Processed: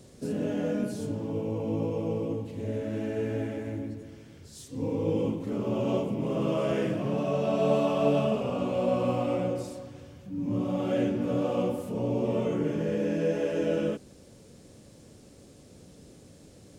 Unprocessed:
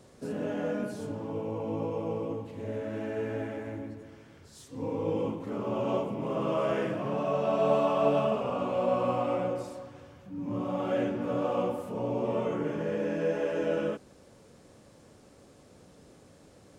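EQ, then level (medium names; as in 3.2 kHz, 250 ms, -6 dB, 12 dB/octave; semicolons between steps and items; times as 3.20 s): peaking EQ 1.1 kHz -10.5 dB 2.1 oct; +6.0 dB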